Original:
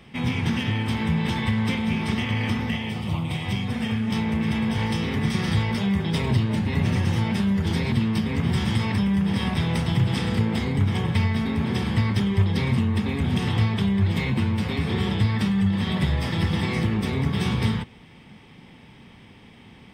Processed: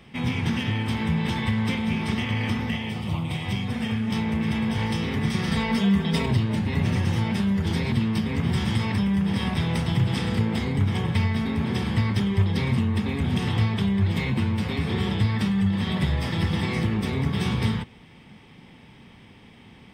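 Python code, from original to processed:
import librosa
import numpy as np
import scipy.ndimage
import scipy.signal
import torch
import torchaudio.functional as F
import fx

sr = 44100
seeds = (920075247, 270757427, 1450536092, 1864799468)

y = fx.comb(x, sr, ms=4.4, depth=0.8, at=(5.51, 6.26))
y = F.gain(torch.from_numpy(y), -1.0).numpy()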